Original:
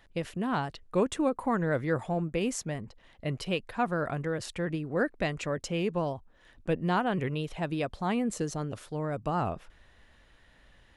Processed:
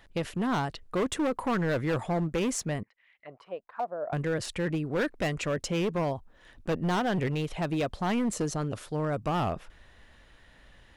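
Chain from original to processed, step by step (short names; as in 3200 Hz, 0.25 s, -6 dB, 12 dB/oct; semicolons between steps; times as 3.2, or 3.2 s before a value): 2.83–4.13 auto-wah 630–2400 Hz, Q 4.7, down, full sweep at -27 dBFS; overloaded stage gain 27.5 dB; gain +3.5 dB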